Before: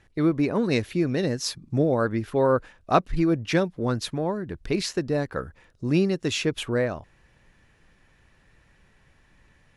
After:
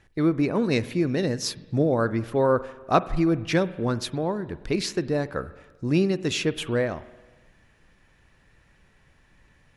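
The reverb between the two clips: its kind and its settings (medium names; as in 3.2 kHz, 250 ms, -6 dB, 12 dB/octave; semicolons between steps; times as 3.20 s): spring tank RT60 1.3 s, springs 43/51 ms, chirp 75 ms, DRR 15.5 dB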